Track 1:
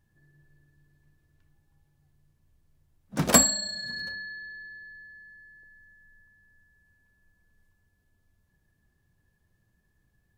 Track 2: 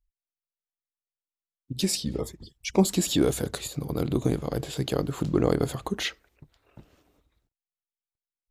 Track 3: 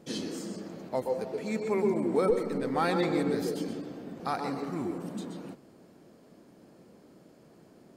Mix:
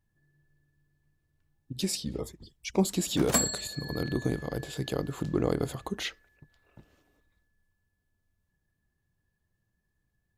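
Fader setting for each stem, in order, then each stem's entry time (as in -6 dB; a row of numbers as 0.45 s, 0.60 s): -7.5 dB, -4.5 dB, mute; 0.00 s, 0.00 s, mute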